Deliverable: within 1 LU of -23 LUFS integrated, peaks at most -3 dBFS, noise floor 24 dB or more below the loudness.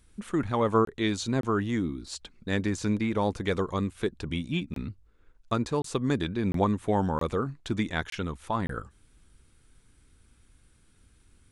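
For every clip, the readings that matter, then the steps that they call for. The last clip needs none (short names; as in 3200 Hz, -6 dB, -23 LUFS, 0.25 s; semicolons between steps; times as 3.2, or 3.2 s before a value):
dropouts 8; longest dropout 23 ms; loudness -29.5 LUFS; peak -11.5 dBFS; loudness target -23.0 LUFS
-> interpolate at 0.85/1.41/4.74/5.82/6.52/7.19/8.1/8.67, 23 ms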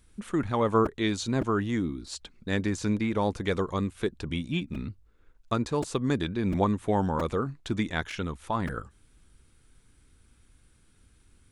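dropouts 0; loudness -29.5 LUFS; peak -11.5 dBFS; loudness target -23.0 LUFS
-> gain +6.5 dB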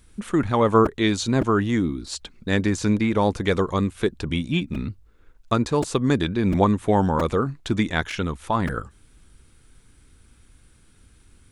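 loudness -23.0 LUFS; peak -5.0 dBFS; noise floor -55 dBFS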